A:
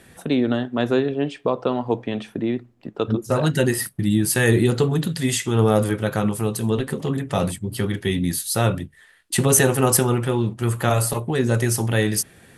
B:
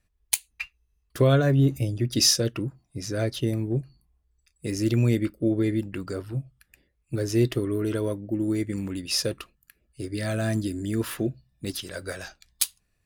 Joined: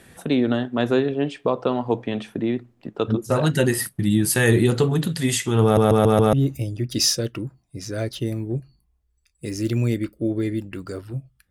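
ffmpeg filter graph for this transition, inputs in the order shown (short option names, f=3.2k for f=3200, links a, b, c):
-filter_complex "[0:a]apad=whole_dur=11.5,atrim=end=11.5,asplit=5[a][b][c][d][e];[a]atrim=end=5.772[f];[b]atrim=start=5.628:end=5.772[g];[c]atrim=start=5.628:end=5.772[h];[d]atrim=start=5.628:end=5.772[i];[e]atrim=start=5.628:end=5.772[j];[1:a]atrim=start=1.538:end=6.71[k];[f][g]acrossfade=d=0.004:c1=hsin:c2=hsin[l];[l][h]acrossfade=d=0.004:c1=hsin:c2=hsin[m];[m][i]acrossfade=d=0.004:c1=hsin:c2=hsin[n];[n][j]acrossfade=d=0.004:c1=hsin:c2=hsin[o];[o][k]acrossfade=d=0.004:c1=hsin:c2=hsin"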